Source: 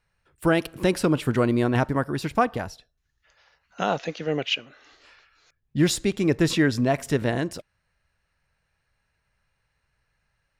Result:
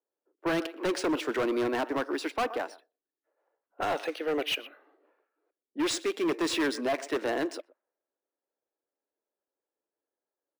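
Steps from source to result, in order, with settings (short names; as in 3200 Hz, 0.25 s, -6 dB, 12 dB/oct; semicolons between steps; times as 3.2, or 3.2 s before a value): steep high-pass 290 Hz 48 dB/oct; outdoor echo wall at 21 m, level -21 dB; hard clip -24.5 dBFS, distortion -7 dB; low-pass opened by the level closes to 370 Hz, open at -27 dBFS; decimation joined by straight lines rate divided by 3×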